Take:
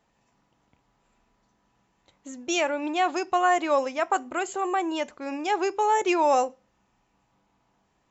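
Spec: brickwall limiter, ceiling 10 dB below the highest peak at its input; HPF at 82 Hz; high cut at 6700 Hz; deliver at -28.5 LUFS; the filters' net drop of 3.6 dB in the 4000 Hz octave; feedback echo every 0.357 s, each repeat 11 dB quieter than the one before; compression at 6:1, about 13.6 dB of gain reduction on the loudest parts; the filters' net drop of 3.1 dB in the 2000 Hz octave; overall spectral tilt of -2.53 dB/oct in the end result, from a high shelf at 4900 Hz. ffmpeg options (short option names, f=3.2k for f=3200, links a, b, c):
-af "highpass=82,lowpass=6.7k,equalizer=f=2k:t=o:g=-3.5,equalizer=f=4k:t=o:g=-5,highshelf=f=4.9k:g=4,acompressor=threshold=-33dB:ratio=6,alimiter=level_in=7dB:limit=-24dB:level=0:latency=1,volume=-7dB,aecho=1:1:357|714|1071:0.282|0.0789|0.0221,volume=11dB"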